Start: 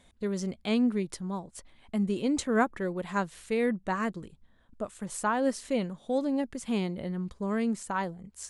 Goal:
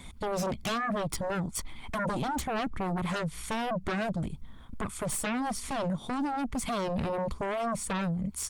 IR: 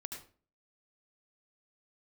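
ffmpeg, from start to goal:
-filter_complex "[0:a]aecho=1:1:0.9:0.61,acrossover=split=220[a][b];[b]acompressor=threshold=-41dB:ratio=4[c];[a][c]amix=inputs=2:normalize=0,aeval=exprs='0.0841*sin(PI/2*5.62*val(0)/0.0841)':c=same,volume=-5.5dB" -ar 48000 -c:a libopus -b:a 24k

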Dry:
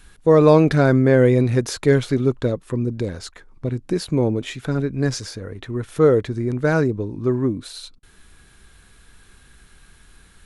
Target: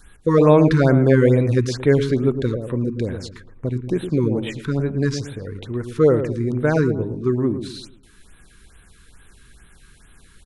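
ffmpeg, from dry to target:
-filter_complex "[0:a]acrossover=split=6600[a][b];[b]acompressor=threshold=-50dB:ratio=4:attack=1:release=60[c];[a][c]amix=inputs=2:normalize=0,asplit=2[d][e];[e]adelay=113,lowpass=f=880:p=1,volume=-7.5dB,asplit=2[f][g];[g]adelay=113,lowpass=f=880:p=1,volume=0.43,asplit=2[h][i];[i]adelay=113,lowpass=f=880:p=1,volume=0.43,asplit=2[j][k];[k]adelay=113,lowpass=f=880:p=1,volume=0.43,asplit=2[l][m];[m]adelay=113,lowpass=f=880:p=1,volume=0.43[n];[d][f][h][j][l][n]amix=inputs=6:normalize=0,afftfilt=real='re*(1-between(b*sr/1024,610*pow(5900/610,0.5+0.5*sin(2*PI*2.3*pts/sr))/1.41,610*pow(5900/610,0.5+0.5*sin(2*PI*2.3*pts/sr))*1.41))':imag='im*(1-between(b*sr/1024,610*pow(5900/610,0.5+0.5*sin(2*PI*2.3*pts/sr))/1.41,610*pow(5900/610,0.5+0.5*sin(2*PI*2.3*pts/sr))*1.41))':win_size=1024:overlap=0.75"

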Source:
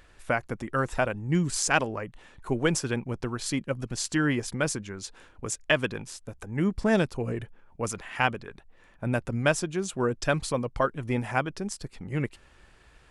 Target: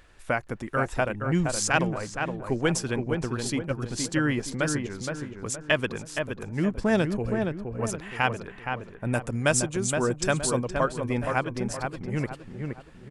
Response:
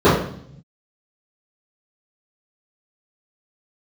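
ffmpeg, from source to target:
-filter_complex "[0:a]asettb=1/sr,asplit=3[a][b][c];[a]atrim=end=9.134[d];[b]atrim=start=9.13:end=10.59,asetpts=PTS-STARTPTS,afade=t=in:d=0.004:c=qsin,afade=t=out:st=1.456:d=0.004:c=qsin,equalizer=f=8.2k:t=o:w=0.97:g=10.5[e];[c]atrim=start=10.586[f];[d][e]acrossfade=d=0.004:c1=hsin:c2=qsin[g];[g][f]acrossfade=d=0.004:c1=qsin:c2=hsin,asplit=2[h][i];[i]adelay=469,lowpass=f=1.8k:p=1,volume=-4.5dB,asplit=2[j][k];[k]adelay=469,lowpass=f=1.8k:p=1,volume=0.41,asplit=2[l][m];[m]adelay=469,lowpass=f=1.8k:p=1,volume=0.41,asplit=2[n][o];[o]adelay=469,lowpass=f=1.8k:p=1,volume=0.41,asplit=2[p][q];[q]adelay=469,lowpass=f=1.8k:p=1,volume=0.41[r];[h][j][l][n][p][r]amix=inputs=6:normalize=0"

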